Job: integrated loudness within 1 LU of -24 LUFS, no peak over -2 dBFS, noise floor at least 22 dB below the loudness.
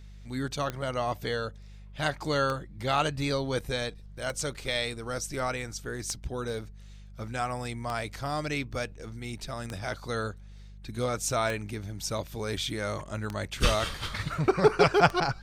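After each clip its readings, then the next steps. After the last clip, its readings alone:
clicks found 9; hum 50 Hz; highest harmonic 200 Hz; hum level -44 dBFS; loudness -30.5 LUFS; peak level -5.5 dBFS; loudness target -24.0 LUFS
-> de-click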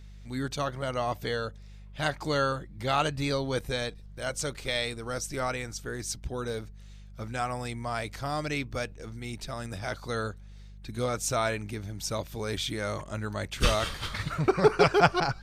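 clicks found 0; hum 50 Hz; highest harmonic 200 Hz; hum level -44 dBFS
-> de-hum 50 Hz, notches 4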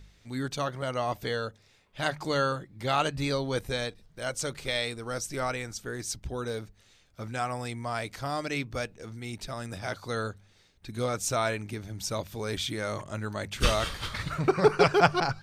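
hum not found; loudness -30.5 LUFS; peak level -5.5 dBFS; loudness target -24.0 LUFS
-> trim +6.5 dB; peak limiter -2 dBFS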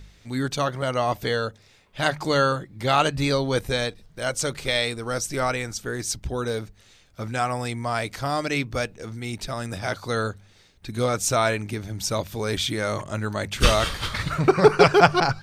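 loudness -24.0 LUFS; peak level -2.0 dBFS; noise floor -55 dBFS

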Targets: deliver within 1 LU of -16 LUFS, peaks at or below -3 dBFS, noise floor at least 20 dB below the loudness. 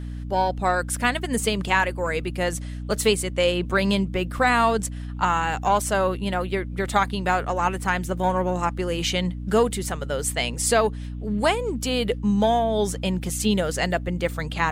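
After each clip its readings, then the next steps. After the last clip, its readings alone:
hum 60 Hz; highest harmonic 300 Hz; hum level -30 dBFS; loudness -23.5 LUFS; peak level -6.0 dBFS; loudness target -16.0 LUFS
-> hum notches 60/120/180/240/300 Hz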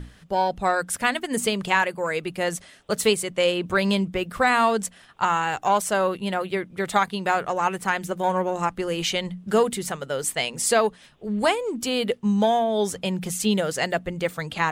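hum not found; loudness -24.0 LUFS; peak level -6.0 dBFS; loudness target -16.0 LUFS
-> trim +8 dB; peak limiter -3 dBFS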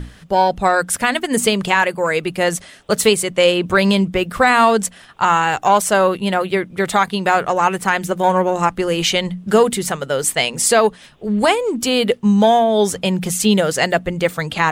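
loudness -16.5 LUFS; peak level -3.0 dBFS; noise floor -43 dBFS

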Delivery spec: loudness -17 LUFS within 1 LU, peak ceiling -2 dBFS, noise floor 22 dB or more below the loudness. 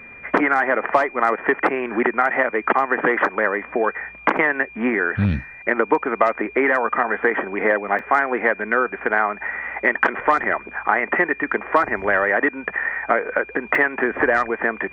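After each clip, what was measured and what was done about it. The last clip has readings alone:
dropouts 3; longest dropout 2.7 ms; steady tone 2.4 kHz; tone level -39 dBFS; loudness -20.0 LUFS; peak level -1.5 dBFS; loudness target -17.0 LUFS
-> interpolate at 4.37/7.99/13.75 s, 2.7 ms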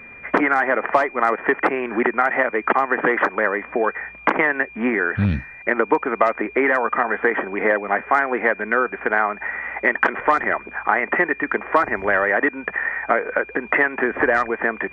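dropouts 0; steady tone 2.4 kHz; tone level -39 dBFS
-> band-stop 2.4 kHz, Q 30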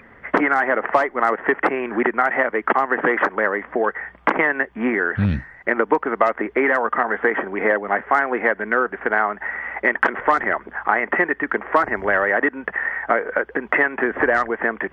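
steady tone not found; loudness -20.0 LUFS; peak level -2.0 dBFS; loudness target -17.0 LUFS
-> trim +3 dB; peak limiter -2 dBFS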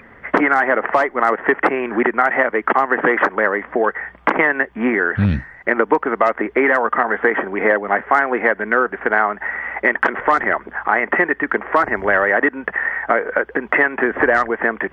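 loudness -17.5 LUFS; peak level -2.0 dBFS; noise floor -45 dBFS

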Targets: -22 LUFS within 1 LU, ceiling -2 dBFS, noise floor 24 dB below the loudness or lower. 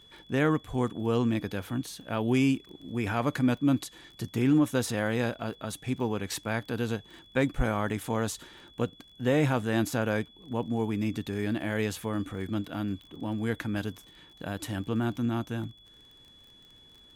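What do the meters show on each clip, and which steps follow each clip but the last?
tick rate 25 per s; steady tone 3.4 kHz; tone level -54 dBFS; loudness -30.0 LUFS; peak level -14.5 dBFS; loudness target -22.0 LUFS
-> de-click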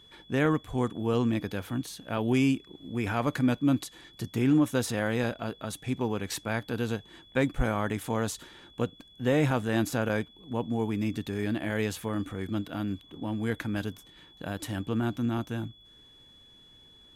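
tick rate 0.058 per s; steady tone 3.4 kHz; tone level -54 dBFS
-> band-stop 3.4 kHz, Q 30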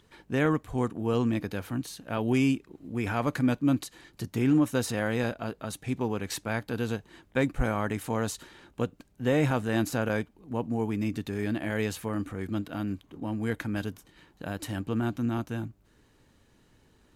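steady tone not found; loudness -30.0 LUFS; peak level -15.0 dBFS; loudness target -22.0 LUFS
-> trim +8 dB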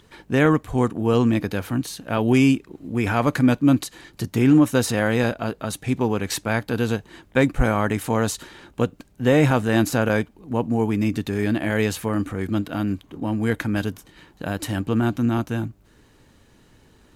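loudness -22.0 LUFS; peak level -7.0 dBFS; noise floor -56 dBFS

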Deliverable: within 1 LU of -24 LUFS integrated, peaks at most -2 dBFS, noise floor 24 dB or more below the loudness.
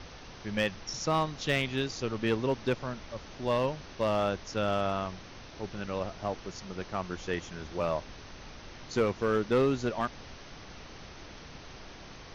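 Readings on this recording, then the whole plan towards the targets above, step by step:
clipped samples 0.4%; clipping level -19.5 dBFS; noise floor -48 dBFS; noise floor target -56 dBFS; loudness -32.0 LUFS; peak level -19.5 dBFS; loudness target -24.0 LUFS
-> clip repair -19.5 dBFS; noise print and reduce 8 dB; trim +8 dB

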